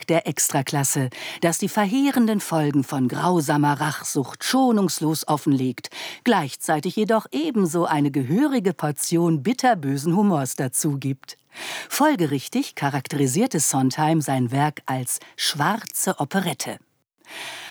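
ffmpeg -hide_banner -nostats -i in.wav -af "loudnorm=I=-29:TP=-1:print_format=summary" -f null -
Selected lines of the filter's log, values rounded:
Input Integrated:    -22.2 LUFS
Input True Peak:      -6.7 dBTP
Input LRA:             3.7 LU
Input Threshold:     -32.6 LUFS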